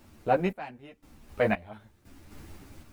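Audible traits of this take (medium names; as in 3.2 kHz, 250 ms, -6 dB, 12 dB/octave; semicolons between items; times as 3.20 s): a quantiser's noise floor 10-bit, dither none; random-step tremolo 3.9 Hz, depth 95%; a shimmering, thickened sound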